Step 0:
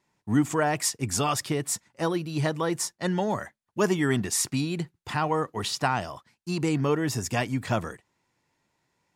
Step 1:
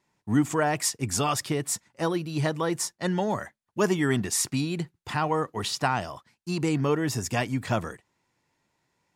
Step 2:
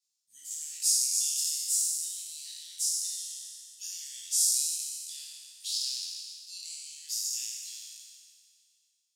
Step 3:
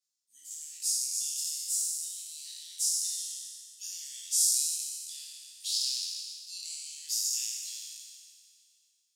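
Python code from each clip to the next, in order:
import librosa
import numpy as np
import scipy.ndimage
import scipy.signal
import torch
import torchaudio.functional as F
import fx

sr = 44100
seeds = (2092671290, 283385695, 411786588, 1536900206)

y1 = x
y2 = fx.spec_trails(y1, sr, decay_s=2.15)
y2 = scipy.signal.sosfilt(scipy.signal.cheby2(4, 60, 1300.0, 'highpass', fs=sr, output='sos'), y2)
y2 = fx.detune_double(y2, sr, cents=39)
y2 = y2 * librosa.db_to_amplitude(1.5)
y3 = fx.fixed_phaser(y2, sr, hz=300.0, stages=4)
y3 = fx.rider(y3, sr, range_db=5, speed_s=2.0)
y3 = y3 * librosa.db_to_amplitude(-2.0)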